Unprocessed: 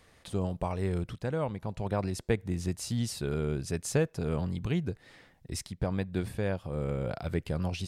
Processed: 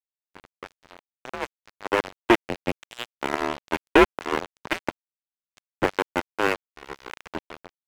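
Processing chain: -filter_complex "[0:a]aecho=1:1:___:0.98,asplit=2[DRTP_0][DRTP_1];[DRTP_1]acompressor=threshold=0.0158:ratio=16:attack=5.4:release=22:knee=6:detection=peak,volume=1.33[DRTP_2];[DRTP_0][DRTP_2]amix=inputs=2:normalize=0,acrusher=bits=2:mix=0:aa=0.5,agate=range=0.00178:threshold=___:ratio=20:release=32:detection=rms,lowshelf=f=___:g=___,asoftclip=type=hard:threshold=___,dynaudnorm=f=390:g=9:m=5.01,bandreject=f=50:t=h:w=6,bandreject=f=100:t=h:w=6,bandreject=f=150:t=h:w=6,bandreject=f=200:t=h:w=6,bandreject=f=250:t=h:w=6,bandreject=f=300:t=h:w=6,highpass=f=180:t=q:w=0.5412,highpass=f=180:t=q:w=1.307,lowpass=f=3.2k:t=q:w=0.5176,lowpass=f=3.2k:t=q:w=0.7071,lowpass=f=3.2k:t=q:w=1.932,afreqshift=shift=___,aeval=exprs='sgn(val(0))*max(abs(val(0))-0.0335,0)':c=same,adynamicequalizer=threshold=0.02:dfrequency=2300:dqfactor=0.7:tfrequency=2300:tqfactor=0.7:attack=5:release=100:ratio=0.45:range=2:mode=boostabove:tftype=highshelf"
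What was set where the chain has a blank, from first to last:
1.9, 0.00126, 290, -5.5, 0.106, -110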